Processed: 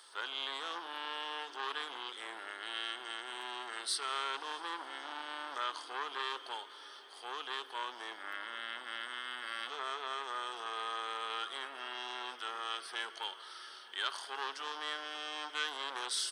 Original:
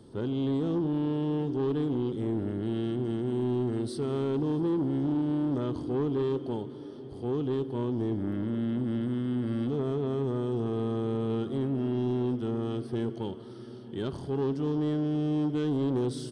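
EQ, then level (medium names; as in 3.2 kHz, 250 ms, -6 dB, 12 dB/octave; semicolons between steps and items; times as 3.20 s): ladder high-pass 1.1 kHz, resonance 25%; +16.0 dB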